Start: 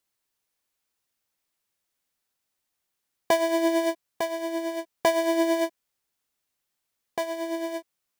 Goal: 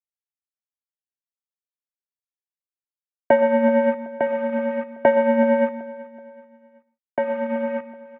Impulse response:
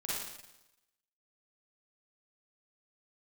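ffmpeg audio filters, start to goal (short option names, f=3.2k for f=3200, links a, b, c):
-filter_complex "[0:a]equalizer=f=780:w=5.5:g=6.5,acrusher=bits=7:dc=4:mix=0:aa=0.000001,aecho=1:1:378|756|1134:0.119|0.0487|0.02,asplit=2[a][b];[1:a]atrim=start_sample=2205,atrim=end_sample=4410,adelay=64[c];[b][c]afir=irnorm=-1:irlink=0,volume=-17.5dB[d];[a][d]amix=inputs=2:normalize=0,highpass=f=230:t=q:w=0.5412,highpass=f=230:t=q:w=1.307,lowpass=f=2.3k:t=q:w=0.5176,lowpass=f=2.3k:t=q:w=0.7071,lowpass=f=2.3k:t=q:w=1.932,afreqshift=-100,volume=5dB"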